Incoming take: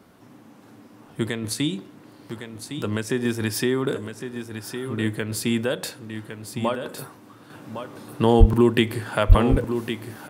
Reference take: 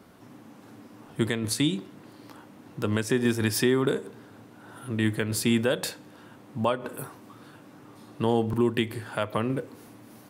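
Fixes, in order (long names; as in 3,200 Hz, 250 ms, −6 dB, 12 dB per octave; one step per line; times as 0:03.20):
0:08.39–0:08.51: high-pass filter 140 Hz 24 dB per octave
0:09.28–0:09.40: high-pass filter 140 Hz 24 dB per octave
echo removal 1,109 ms −9 dB
0:07.50: level correction −6.5 dB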